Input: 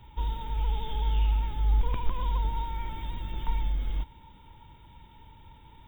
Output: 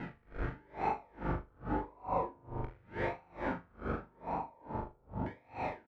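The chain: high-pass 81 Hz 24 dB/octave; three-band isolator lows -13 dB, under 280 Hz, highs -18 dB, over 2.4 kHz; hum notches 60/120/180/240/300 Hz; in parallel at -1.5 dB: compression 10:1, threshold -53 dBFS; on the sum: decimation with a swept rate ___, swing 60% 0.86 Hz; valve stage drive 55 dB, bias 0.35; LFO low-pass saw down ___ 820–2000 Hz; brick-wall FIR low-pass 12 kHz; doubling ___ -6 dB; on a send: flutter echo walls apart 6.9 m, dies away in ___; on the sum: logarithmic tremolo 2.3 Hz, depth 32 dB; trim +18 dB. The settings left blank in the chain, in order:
37×, 0.38 Hz, 23 ms, 1.1 s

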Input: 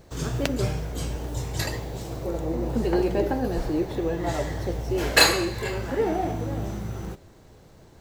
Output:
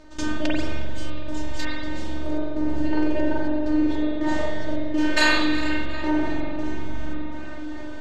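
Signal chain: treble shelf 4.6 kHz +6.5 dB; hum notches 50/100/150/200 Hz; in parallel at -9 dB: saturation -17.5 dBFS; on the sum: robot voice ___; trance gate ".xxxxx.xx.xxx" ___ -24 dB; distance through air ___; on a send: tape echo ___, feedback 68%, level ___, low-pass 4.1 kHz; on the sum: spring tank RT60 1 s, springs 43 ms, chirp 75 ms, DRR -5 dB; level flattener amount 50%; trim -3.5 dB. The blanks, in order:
306 Hz, 82 bpm, 120 m, 363 ms, -16 dB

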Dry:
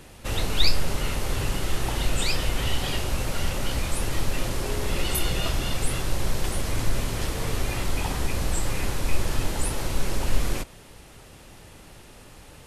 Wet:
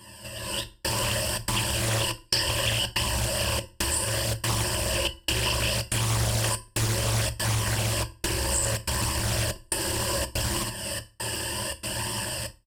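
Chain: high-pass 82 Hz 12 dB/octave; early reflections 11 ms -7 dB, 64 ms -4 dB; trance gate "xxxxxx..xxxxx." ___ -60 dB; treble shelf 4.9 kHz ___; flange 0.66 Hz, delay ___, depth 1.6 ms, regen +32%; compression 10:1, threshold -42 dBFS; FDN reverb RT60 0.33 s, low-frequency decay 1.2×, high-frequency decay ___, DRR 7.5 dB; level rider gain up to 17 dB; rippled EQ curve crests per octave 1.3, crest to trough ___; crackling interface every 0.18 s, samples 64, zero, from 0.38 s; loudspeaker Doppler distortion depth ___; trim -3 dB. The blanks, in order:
142 bpm, +10 dB, 0.9 ms, 0.9×, 18 dB, 0.48 ms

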